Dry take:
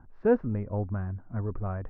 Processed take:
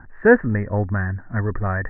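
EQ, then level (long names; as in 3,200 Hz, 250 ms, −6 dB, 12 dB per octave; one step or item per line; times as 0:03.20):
low-pass with resonance 1,800 Hz, resonance Q 14
+8.5 dB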